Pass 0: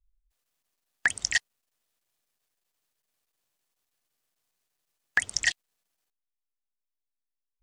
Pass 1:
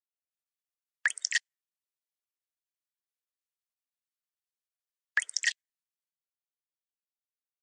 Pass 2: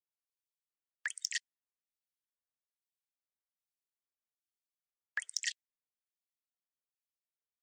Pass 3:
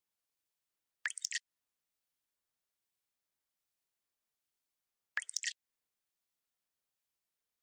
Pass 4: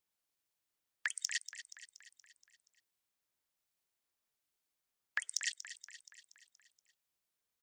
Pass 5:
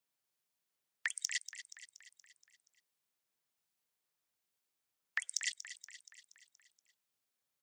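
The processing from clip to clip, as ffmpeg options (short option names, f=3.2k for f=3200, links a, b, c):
-af "afftdn=nr=15:nf=-47,highpass=f=550:w=0.5412,highpass=f=550:w=1.3066,equalizer=f=770:t=o:w=0.6:g=-12.5,volume=-2.5dB"
-filter_complex "[0:a]acrossover=split=940[a][b];[a]acrusher=bits=4:mode=log:mix=0:aa=0.000001[c];[c][b]amix=inputs=2:normalize=0,acrossover=split=2000[d][e];[d]aeval=exprs='val(0)*(1-1/2+1/2*cos(2*PI*1.2*n/s))':c=same[f];[e]aeval=exprs='val(0)*(1-1/2-1/2*cos(2*PI*1.2*n/s))':c=same[g];[f][g]amix=inputs=2:normalize=0,volume=13dB,asoftclip=hard,volume=-13dB,volume=-4dB"
-af "acompressor=threshold=-40dB:ratio=4,volume=5.5dB"
-af "aecho=1:1:237|474|711|948|1185|1422:0.237|0.133|0.0744|0.0416|0.0233|0.0131,volume=1dB"
-af "afreqshift=78"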